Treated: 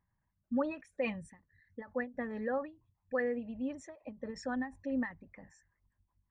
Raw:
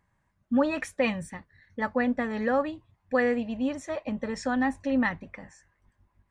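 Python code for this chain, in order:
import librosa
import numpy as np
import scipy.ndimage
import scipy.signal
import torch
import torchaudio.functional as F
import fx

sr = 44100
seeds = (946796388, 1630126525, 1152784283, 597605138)

y = fx.envelope_sharpen(x, sr, power=1.5)
y = fx.end_taper(y, sr, db_per_s=180.0)
y = y * librosa.db_to_amplitude(-8.5)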